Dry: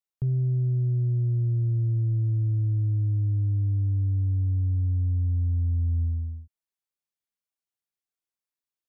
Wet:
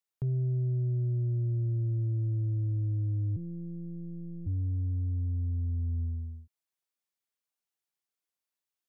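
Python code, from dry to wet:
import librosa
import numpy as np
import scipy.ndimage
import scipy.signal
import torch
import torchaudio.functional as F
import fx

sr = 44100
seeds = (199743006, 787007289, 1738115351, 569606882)

y = fx.low_shelf(x, sr, hz=150.0, db=-10.0)
y = fx.robotise(y, sr, hz=170.0, at=(3.36, 4.47))
y = y * librosa.db_to_amplitude(1.0)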